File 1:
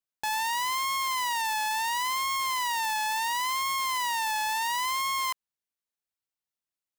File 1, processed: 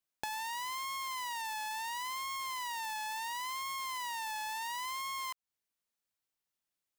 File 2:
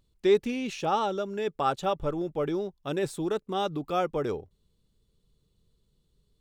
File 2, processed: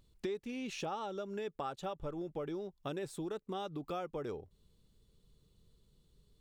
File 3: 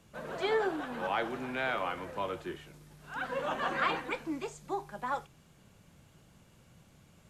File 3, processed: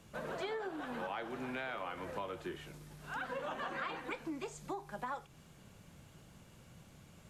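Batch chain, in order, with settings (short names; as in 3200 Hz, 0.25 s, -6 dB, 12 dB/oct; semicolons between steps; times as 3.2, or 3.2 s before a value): compressor 6:1, threshold -40 dBFS; gain +2 dB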